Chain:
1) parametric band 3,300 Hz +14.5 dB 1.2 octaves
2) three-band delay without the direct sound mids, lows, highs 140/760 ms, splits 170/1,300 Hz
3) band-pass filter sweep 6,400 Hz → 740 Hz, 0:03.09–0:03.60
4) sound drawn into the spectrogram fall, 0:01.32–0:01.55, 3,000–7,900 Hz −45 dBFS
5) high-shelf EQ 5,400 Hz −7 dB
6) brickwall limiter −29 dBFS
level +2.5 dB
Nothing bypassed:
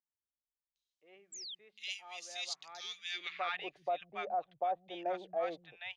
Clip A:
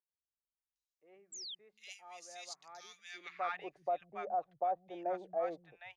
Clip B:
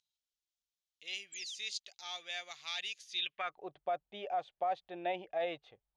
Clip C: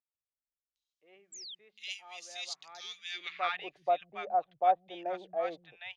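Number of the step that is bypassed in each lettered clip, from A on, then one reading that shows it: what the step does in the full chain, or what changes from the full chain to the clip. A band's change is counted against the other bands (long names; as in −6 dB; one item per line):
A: 1, 4 kHz band −8.0 dB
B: 2, change in momentary loudness spread −2 LU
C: 6, change in crest factor +7.0 dB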